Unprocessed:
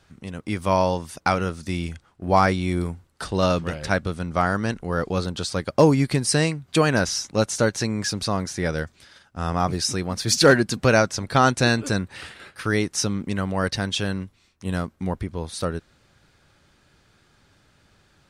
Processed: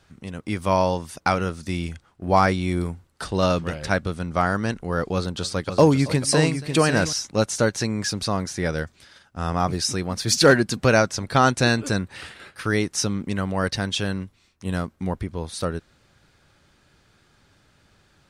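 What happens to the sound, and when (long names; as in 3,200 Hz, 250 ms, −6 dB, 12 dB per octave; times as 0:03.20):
0:05.13–0:07.13: multi-tap delay 275/546 ms −20/−8 dB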